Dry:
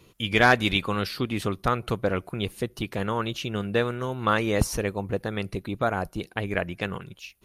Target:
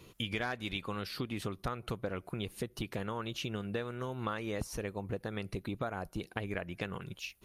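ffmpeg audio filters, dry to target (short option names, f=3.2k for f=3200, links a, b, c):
-af "acompressor=threshold=-34dB:ratio=6"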